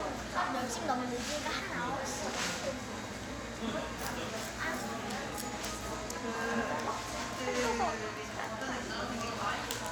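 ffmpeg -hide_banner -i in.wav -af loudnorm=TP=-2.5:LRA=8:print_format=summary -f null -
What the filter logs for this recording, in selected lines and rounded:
Input Integrated:    -35.9 LUFS
Input True Peak:     -16.1 dBTP
Input LRA:             1.7 LU
Input Threshold:     -45.9 LUFS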